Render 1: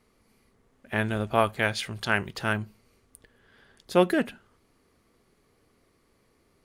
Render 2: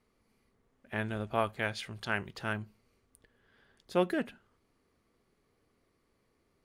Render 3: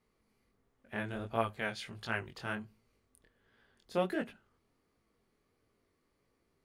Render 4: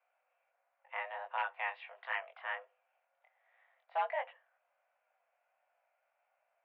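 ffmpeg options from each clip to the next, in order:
-af "highshelf=f=6.6k:g=-5,volume=-7.5dB"
-af "flanger=delay=17.5:depth=7.2:speed=1.4"
-af "aeval=exprs='0.0631*(abs(mod(val(0)/0.0631+3,4)-2)-1)':c=same,highpass=f=300:t=q:w=0.5412,highpass=f=300:t=q:w=1.307,lowpass=f=2.5k:t=q:w=0.5176,lowpass=f=2.5k:t=q:w=0.7071,lowpass=f=2.5k:t=q:w=1.932,afreqshift=290"

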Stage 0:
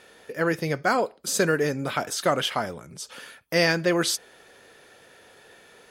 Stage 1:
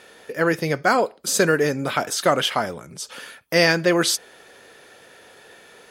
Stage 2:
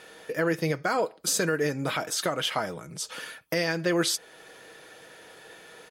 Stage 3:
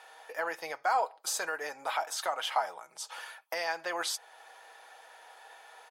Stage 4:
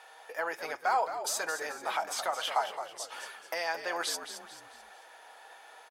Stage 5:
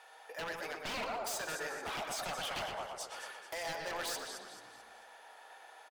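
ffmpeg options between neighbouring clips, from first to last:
-af "lowshelf=f=110:g=-5.5,volume=4.5dB"
-af "aecho=1:1:6.3:0.36,alimiter=limit=-13.5dB:level=0:latency=1:release=376,volume=-1.5dB"
-af "highpass=f=820:t=q:w=4.2,volume=-7dB"
-filter_complex "[0:a]asplit=5[a][b][c][d][e];[b]adelay=219,afreqshift=-73,volume=-10dB[f];[c]adelay=438,afreqshift=-146,volume=-18dB[g];[d]adelay=657,afreqshift=-219,volume=-25.9dB[h];[e]adelay=876,afreqshift=-292,volume=-33.9dB[i];[a][f][g][h][i]amix=inputs=5:normalize=0"
-filter_complex "[0:a]aeval=exprs='0.0316*(abs(mod(val(0)/0.0316+3,4)-2)-1)':c=same,asplit=2[a][b];[b]adelay=120,lowpass=f=2.8k:p=1,volume=-4dB,asplit=2[c][d];[d]adelay=120,lowpass=f=2.8k:p=1,volume=0.49,asplit=2[e][f];[f]adelay=120,lowpass=f=2.8k:p=1,volume=0.49,asplit=2[g][h];[h]adelay=120,lowpass=f=2.8k:p=1,volume=0.49,asplit=2[i][j];[j]adelay=120,lowpass=f=2.8k:p=1,volume=0.49,asplit=2[k][l];[l]adelay=120,lowpass=f=2.8k:p=1,volume=0.49[m];[a][c][e][g][i][k][m]amix=inputs=7:normalize=0,volume=-4dB"

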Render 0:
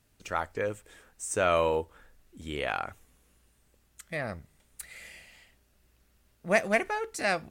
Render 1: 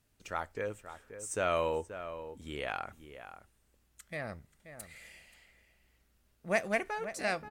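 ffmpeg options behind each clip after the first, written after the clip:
-filter_complex "[0:a]asplit=2[a][b];[b]adelay=530.6,volume=-11dB,highshelf=f=4k:g=-11.9[c];[a][c]amix=inputs=2:normalize=0,volume=-5.5dB"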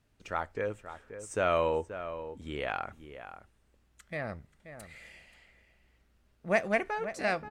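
-af "aemphasis=mode=reproduction:type=50kf,volume=3.5dB"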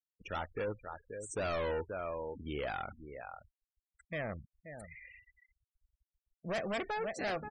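-af "volume=32.5dB,asoftclip=hard,volume=-32.5dB,afftfilt=real='re*gte(hypot(re,im),0.00631)':imag='im*gte(hypot(re,im),0.00631)':win_size=1024:overlap=0.75"

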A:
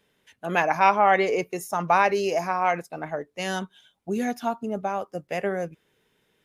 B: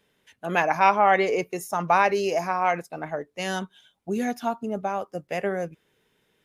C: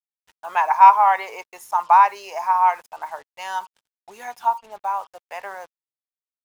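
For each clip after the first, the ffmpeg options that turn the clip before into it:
-af anull
-af "highpass=f=940:t=q:w=8.1,acrusher=bits=6:mix=0:aa=0.5,volume=-5dB"

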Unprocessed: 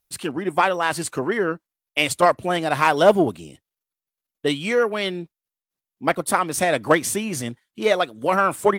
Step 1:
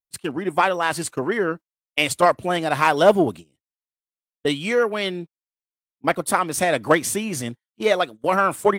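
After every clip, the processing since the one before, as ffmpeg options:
-af "agate=range=-22dB:threshold=-32dB:ratio=16:detection=peak"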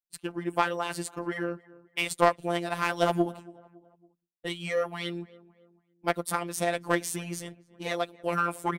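-filter_complex "[0:a]asplit=2[a][b];[b]adelay=279,lowpass=f=1.6k:p=1,volume=-21dB,asplit=2[c][d];[d]adelay=279,lowpass=f=1.6k:p=1,volume=0.47,asplit=2[e][f];[f]adelay=279,lowpass=f=1.6k:p=1,volume=0.47[g];[a][c][e][g]amix=inputs=4:normalize=0,afftfilt=real='hypot(re,im)*cos(PI*b)':imag='0':win_size=1024:overlap=0.75,aeval=exprs='0.841*(cos(1*acos(clip(val(0)/0.841,-1,1)))-cos(1*PI/2))+0.075*(cos(3*acos(clip(val(0)/0.841,-1,1)))-cos(3*PI/2))':c=same,volume=-3dB"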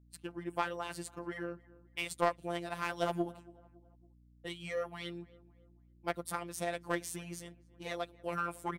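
-af "aeval=exprs='val(0)+0.00224*(sin(2*PI*60*n/s)+sin(2*PI*2*60*n/s)/2+sin(2*PI*3*60*n/s)/3+sin(2*PI*4*60*n/s)/4+sin(2*PI*5*60*n/s)/5)':c=same,volume=-8.5dB"

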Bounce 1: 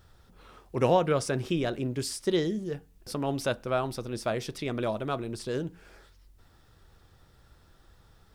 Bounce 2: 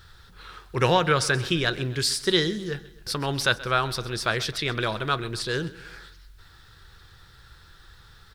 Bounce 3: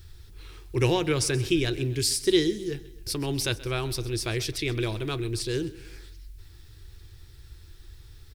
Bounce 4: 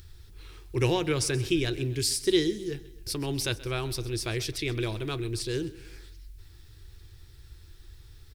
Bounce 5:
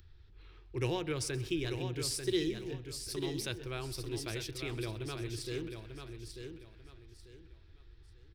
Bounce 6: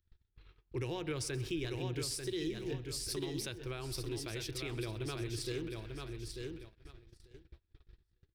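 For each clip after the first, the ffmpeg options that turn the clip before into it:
-af "equalizer=f=250:t=o:w=0.67:g=-10,equalizer=f=630:t=o:w=0.67:g=-9,equalizer=f=1.6k:t=o:w=0.67:g=8,equalizer=f=4k:t=o:w=0.67:g=9,aecho=1:1:130|260|390|520:0.119|0.0606|0.0309|0.0158,volume=6.5dB"
-af "firequalizer=gain_entry='entry(100,0);entry(180,-15);entry(320,0);entry(540,-14);entry(800,-14);entry(1400,-21);entry(2300,-7);entry(3600,-12);entry(5500,-6);entry(11000,-2)':delay=0.05:min_phase=1,volume=6dB"
-af "acompressor=mode=upward:threshold=-48dB:ratio=2.5,volume=-2dB"
-filter_complex "[0:a]acrossover=split=160|4400[a][b][c];[c]aeval=exprs='sgn(val(0))*max(abs(val(0))-0.00178,0)':c=same[d];[a][b][d]amix=inputs=3:normalize=0,aecho=1:1:892|1784|2676:0.447|0.125|0.035,volume=-8.5dB"
-af "agate=range=-27dB:threshold=-52dB:ratio=16:detection=peak,alimiter=level_in=6.5dB:limit=-24dB:level=0:latency=1:release=235,volume=-6.5dB,volume=2.5dB"

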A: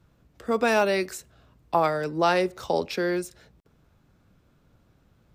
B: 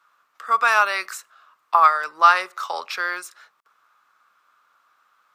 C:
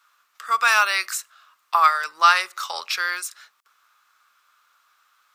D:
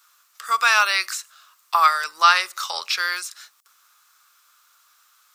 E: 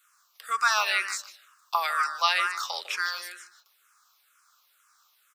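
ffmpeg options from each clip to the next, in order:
-af "highpass=f=1.2k:t=q:w=5.3,volume=2.5dB"
-af "tiltshelf=f=1.5k:g=-8.5"
-filter_complex "[0:a]bass=f=250:g=-1,treble=f=4k:g=12,acrossover=split=4700[a][b];[b]acompressor=threshold=-35dB:ratio=4:attack=1:release=60[c];[a][c]amix=inputs=2:normalize=0"
-filter_complex "[0:a]asplit=2[a][b];[b]adelay=152,lowpass=f=3.6k:p=1,volume=-6.5dB,asplit=2[c][d];[d]adelay=152,lowpass=f=3.6k:p=1,volume=0.17,asplit=2[e][f];[f]adelay=152,lowpass=f=3.6k:p=1,volume=0.17[g];[c][e][g]amix=inputs=3:normalize=0[h];[a][h]amix=inputs=2:normalize=0,asplit=2[i][j];[j]afreqshift=-2.1[k];[i][k]amix=inputs=2:normalize=1,volume=-3.5dB"

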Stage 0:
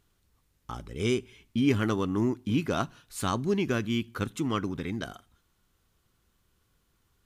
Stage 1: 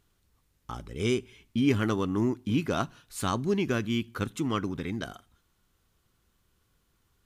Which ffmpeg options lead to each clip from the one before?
-af anull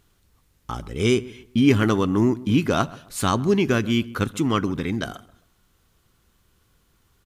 -filter_complex "[0:a]asplit=2[a][b];[b]adelay=133,lowpass=f=1.5k:p=1,volume=-19dB,asplit=2[c][d];[d]adelay=133,lowpass=f=1.5k:p=1,volume=0.33,asplit=2[e][f];[f]adelay=133,lowpass=f=1.5k:p=1,volume=0.33[g];[a][c][e][g]amix=inputs=4:normalize=0,volume=7.5dB"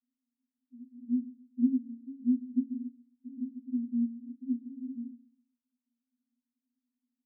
-af "asuperpass=centerf=250:order=12:qfactor=7,volume=-4dB"

